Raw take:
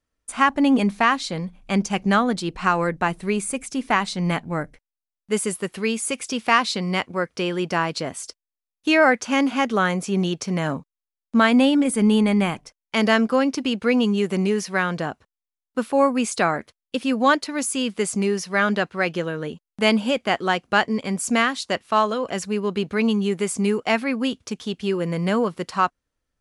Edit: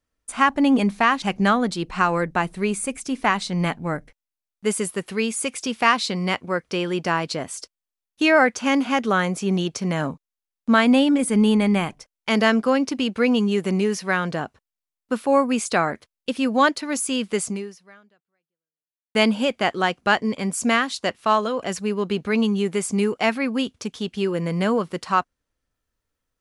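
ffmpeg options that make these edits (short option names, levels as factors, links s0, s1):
-filter_complex "[0:a]asplit=3[s0][s1][s2];[s0]atrim=end=1.222[s3];[s1]atrim=start=1.878:end=19.81,asetpts=PTS-STARTPTS,afade=t=out:st=16.232:d=1.7:c=exp[s4];[s2]atrim=start=19.81,asetpts=PTS-STARTPTS,afade=t=in:d=0.004:c=hsin[s5];[s4][s5]concat=n=2:v=0:a=1[s6];[s3][s6]acrossfade=d=0.004:c1=hsin:c2=hsin"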